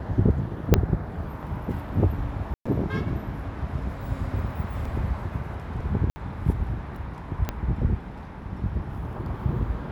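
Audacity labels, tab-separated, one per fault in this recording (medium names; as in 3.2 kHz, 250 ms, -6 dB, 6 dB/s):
0.740000	0.740000	pop -3 dBFS
2.540000	2.650000	dropout 115 ms
4.850000	4.850000	dropout 3.8 ms
6.100000	6.160000	dropout 60 ms
7.490000	7.490000	pop -13 dBFS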